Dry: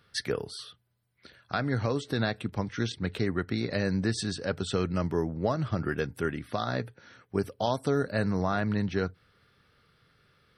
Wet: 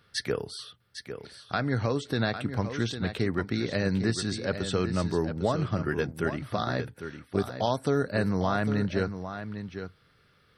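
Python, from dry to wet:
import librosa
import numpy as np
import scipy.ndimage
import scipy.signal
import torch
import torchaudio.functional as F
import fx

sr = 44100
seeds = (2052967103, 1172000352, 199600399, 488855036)

y = x + 10.0 ** (-9.5 / 20.0) * np.pad(x, (int(803 * sr / 1000.0), 0))[:len(x)]
y = y * 10.0 ** (1.0 / 20.0)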